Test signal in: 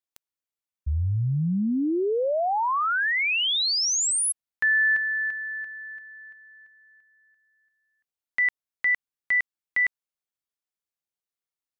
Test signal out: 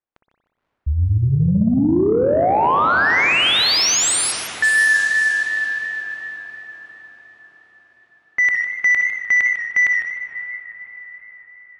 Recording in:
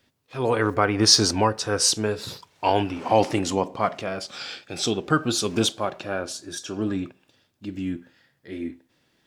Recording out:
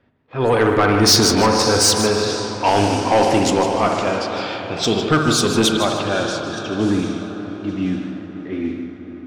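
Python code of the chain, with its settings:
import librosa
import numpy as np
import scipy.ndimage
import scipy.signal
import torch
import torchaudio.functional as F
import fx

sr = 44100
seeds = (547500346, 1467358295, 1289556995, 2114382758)

y = fx.echo_diffused(x, sr, ms=549, feedback_pct=55, wet_db=-12.0)
y = fx.rev_spring(y, sr, rt60_s=1.5, pass_ms=(59,), chirp_ms=40, drr_db=5.0)
y = fx.env_lowpass(y, sr, base_hz=1500.0, full_db=-18.5)
y = 10.0 ** (-15.5 / 20.0) * np.tanh(y / 10.0 ** (-15.5 / 20.0))
y = fx.echo_warbled(y, sr, ms=153, feedback_pct=31, rate_hz=2.8, cents=99, wet_db=-10.5)
y = y * 10.0 ** (7.5 / 20.0)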